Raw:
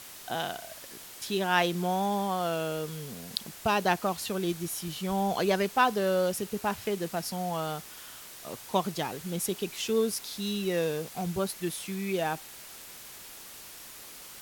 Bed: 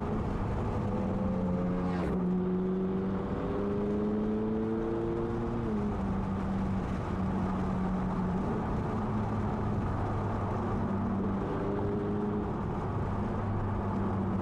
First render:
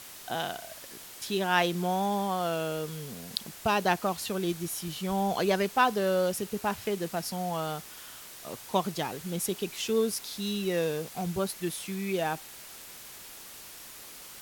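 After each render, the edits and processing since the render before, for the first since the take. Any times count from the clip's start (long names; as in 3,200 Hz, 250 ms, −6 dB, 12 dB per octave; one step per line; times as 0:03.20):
no processing that can be heard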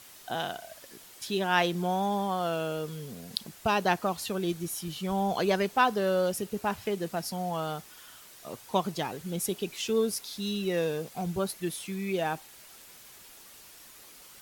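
broadband denoise 6 dB, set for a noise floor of −47 dBFS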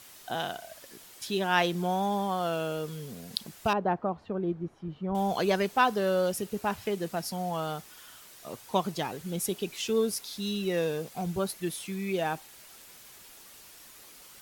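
0:03.73–0:05.15: low-pass filter 1,000 Hz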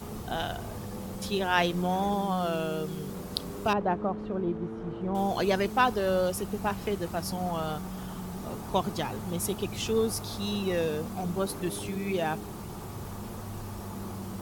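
mix in bed −7 dB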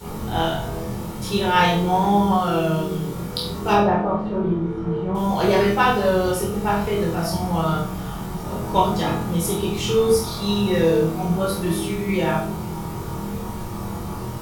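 flutter between parallel walls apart 4.2 metres, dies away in 0.33 s
rectangular room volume 630 cubic metres, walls furnished, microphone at 4.4 metres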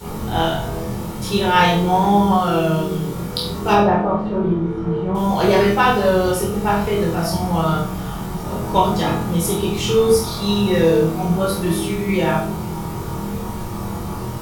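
level +3 dB
brickwall limiter −3 dBFS, peak gain reduction 1.5 dB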